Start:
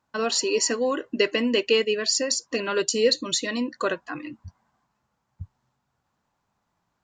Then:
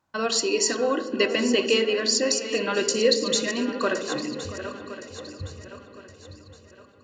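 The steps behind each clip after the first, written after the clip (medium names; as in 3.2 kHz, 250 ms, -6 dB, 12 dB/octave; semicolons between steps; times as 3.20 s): backward echo that repeats 533 ms, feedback 62%, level -11.5 dB; tape echo 682 ms, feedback 43%, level -14 dB, low-pass 1.9 kHz; on a send at -8.5 dB: reverberation RT60 1.1 s, pre-delay 3 ms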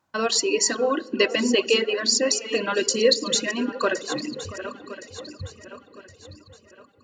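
reverb removal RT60 1.2 s; bass shelf 69 Hz -7 dB; trim +2.5 dB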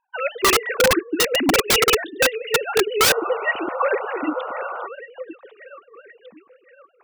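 formants replaced by sine waves; integer overflow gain 17 dB; painted sound noise, 3.01–4.87 s, 470–1500 Hz -37 dBFS; trim +6.5 dB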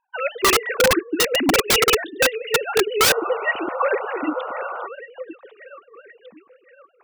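no audible change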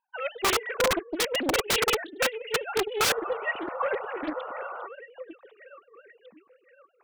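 loudspeaker Doppler distortion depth 0.85 ms; trim -7.5 dB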